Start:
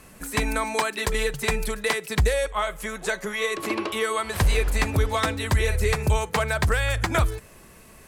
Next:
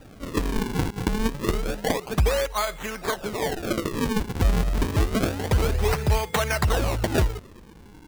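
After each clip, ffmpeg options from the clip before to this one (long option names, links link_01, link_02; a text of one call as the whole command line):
ffmpeg -i in.wav -af "aeval=exprs='val(0)+0.00398*sin(2*PI*8900*n/s)':channel_layout=same,acrusher=samples=40:mix=1:aa=0.000001:lfo=1:lforange=64:lforate=0.28" out.wav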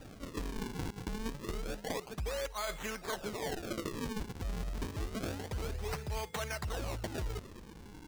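ffmpeg -i in.wav -af "areverse,acompressor=threshold=-32dB:ratio=6,areverse,equalizer=frequency=5700:width_type=o:width=1.4:gain=3,volume=-3.5dB" out.wav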